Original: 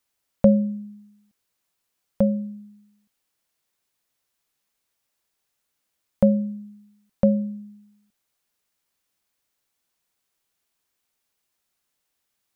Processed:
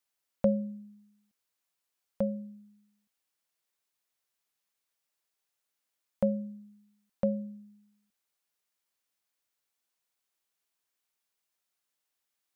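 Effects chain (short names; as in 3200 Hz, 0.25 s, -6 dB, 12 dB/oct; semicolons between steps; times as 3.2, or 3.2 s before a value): low shelf 280 Hz -8 dB; gain -6.5 dB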